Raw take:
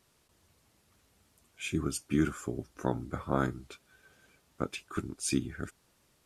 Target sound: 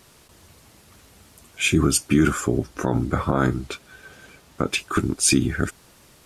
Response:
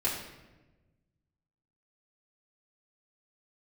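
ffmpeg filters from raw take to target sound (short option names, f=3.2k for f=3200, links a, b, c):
-filter_complex "[0:a]asettb=1/sr,asplit=3[a][b][c];[a]atrim=end=2.404[d];[b]atrim=start=2.4:end=4.73,asetpts=PTS-STARTPTS,afade=t=in:d=0.004:c=qsin,afade=t=out:st=2.326:d=0.004:c=qsin,highshelf=f=8k:g=-4[e];[c]atrim=start=4.726[f];[d][e]acrossfade=d=0.004:c1=hsin:c2=qsin[g];[g][f]acrossfade=d=0.004:c1=qsin:c2=hsin,alimiter=level_in=23dB:limit=-1dB:release=50:level=0:latency=1,volume=-6.5dB"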